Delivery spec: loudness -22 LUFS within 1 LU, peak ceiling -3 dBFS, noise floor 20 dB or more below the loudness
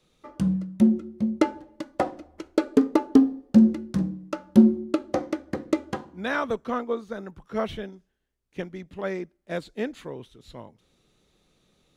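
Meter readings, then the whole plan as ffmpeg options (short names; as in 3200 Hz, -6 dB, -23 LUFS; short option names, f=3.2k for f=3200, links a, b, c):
loudness -25.0 LUFS; peak -4.5 dBFS; loudness target -22.0 LUFS
-> -af "volume=3dB,alimiter=limit=-3dB:level=0:latency=1"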